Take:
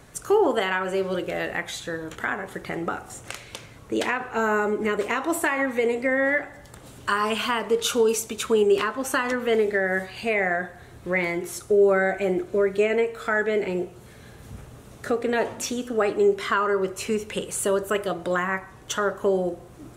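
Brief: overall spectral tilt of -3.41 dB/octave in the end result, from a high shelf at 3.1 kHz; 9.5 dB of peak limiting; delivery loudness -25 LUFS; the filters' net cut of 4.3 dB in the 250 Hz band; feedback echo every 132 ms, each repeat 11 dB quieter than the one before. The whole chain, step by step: peaking EQ 250 Hz -6.5 dB; treble shelf 3.1 kHz +8.5 dB; peak limiter -16.5 dBFS; feedback delay 132 ms, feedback 28%, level -11 dB; trim +1.5 dB

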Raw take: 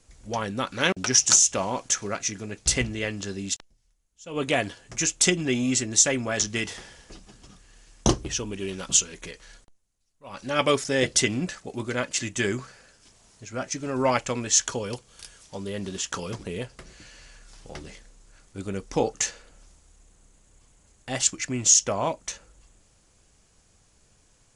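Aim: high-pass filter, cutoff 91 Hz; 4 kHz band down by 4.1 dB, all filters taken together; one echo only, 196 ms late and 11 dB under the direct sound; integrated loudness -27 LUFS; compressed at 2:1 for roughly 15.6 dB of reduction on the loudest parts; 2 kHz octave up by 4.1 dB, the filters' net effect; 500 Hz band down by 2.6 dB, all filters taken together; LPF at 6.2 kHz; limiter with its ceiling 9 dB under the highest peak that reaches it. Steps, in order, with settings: high-pass 91 Hz; low-pass 6.2 kHz; peaking EQ 500 Hz -3.5 dB; peaking EQ 2 kHz +7 dB; peaking EQ 4 kHz -7 dB; compression 2:1, threshold -47 dBFS; peak limiter -27.5 dBFS; delay 196 ms -11 dB; trim +15 dB

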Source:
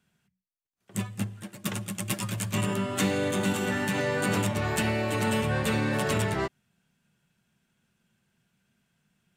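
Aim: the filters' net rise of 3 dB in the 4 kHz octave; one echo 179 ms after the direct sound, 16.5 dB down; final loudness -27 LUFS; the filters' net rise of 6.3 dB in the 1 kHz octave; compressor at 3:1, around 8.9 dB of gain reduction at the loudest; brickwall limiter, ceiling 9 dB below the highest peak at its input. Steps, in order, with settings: peaking EQ 1 kHz +7.5 dB; peaking EQ 4 kHz +3.5 dB; compression 3:1, threshold -33 dBFS; peak limiter -25.5 dBFS; delay 179 ms -16.5 dB; trim +9 dB

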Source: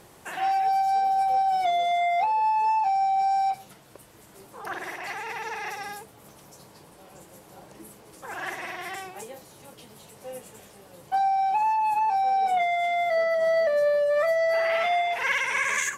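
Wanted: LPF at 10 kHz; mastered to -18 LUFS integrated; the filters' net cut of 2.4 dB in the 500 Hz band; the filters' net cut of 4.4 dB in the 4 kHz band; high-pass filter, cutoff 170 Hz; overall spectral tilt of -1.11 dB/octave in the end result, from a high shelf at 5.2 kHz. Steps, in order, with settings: high-pass 170 Hz; low-pass 10 kHz; peaking EQ 500 Hz -3.5 dB; peaking EQ 4 kHz -7 dB; treble shelf 5.2 kHz +3 dB; trim +8 dB

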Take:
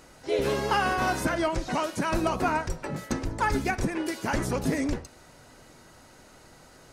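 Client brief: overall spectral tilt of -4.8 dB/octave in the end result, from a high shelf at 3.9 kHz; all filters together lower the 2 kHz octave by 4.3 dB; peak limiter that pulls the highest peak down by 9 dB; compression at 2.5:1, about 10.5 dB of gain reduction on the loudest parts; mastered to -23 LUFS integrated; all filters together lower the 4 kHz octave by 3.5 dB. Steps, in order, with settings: peaking EQ 2 kHz -6 dB; treble shelf 3.9 kHz +5.5 dB; peaking EQ 4 kHz -6.5 dB; compression 2.5:1, threshold -39 dBFS; trim +20 dB; peak limiter -12.5 dBFS

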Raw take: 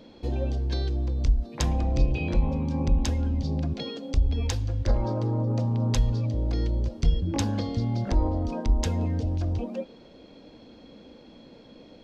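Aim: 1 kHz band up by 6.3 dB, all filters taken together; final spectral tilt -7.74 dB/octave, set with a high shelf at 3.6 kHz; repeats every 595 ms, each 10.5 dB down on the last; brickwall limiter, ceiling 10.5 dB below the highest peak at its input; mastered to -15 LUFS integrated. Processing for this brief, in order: peaking EQ 1 kHz +8.5 dB; treble shelf 3.6 kHz -8.5 dB; peak limiter -22 dBFS; feedback delay 595 ms, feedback 30%, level -10.5 dB; trim +16 dB

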